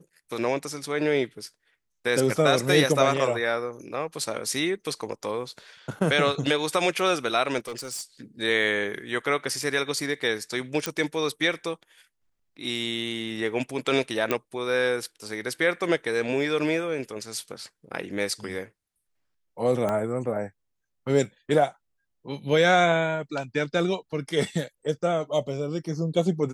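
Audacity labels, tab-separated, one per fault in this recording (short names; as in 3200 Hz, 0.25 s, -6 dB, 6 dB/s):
7.580000	8.020000	clipped -30 dBFS
10.860000	10.860000	pop -10 dBFS
14.310000	14.310000	pop -10 dBFS
19.890000	19.890000	pop -15 dBFS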